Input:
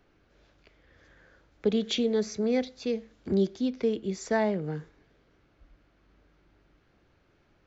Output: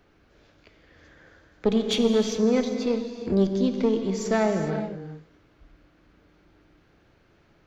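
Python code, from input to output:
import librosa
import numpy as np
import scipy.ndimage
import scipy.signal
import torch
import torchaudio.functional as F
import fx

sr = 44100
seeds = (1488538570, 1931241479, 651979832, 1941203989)

y = fx.diode_clip(x, sr, knee_db=-24.5)
y = fx.rev_gated(y, sr, seeds[0], gate_ms=440, shape='flat', drr_db=5.5)
y = y * 10.0 ** (4.5 / 20.0)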